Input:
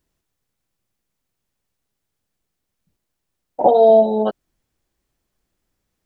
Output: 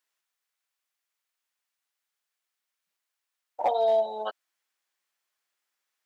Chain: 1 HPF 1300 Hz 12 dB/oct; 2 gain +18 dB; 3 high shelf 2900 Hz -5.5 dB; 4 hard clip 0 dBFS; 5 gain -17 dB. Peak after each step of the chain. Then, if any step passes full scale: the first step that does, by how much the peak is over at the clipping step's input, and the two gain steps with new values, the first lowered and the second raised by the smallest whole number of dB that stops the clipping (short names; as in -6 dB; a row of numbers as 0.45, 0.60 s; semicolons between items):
-13.5, +4.5, +4.0, 0.0, -17.0 dBFS; step 2, 4.0 dB; step 2 +14 dB, step 5 -13 dB